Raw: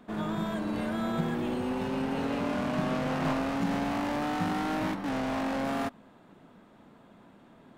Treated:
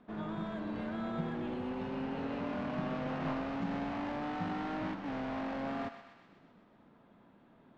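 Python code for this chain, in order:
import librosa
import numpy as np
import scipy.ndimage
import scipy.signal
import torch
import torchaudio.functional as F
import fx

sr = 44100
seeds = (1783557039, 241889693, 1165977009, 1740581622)

y = fx.air_absorb(x, sr, metres=170.0)
y = fx.echo_thinned(y, sr, ms=126, feedback_pct=67, hz=850.0, wet_db=-9)
y = F.gain(torch.from_numpy(y), -6.5).numpy()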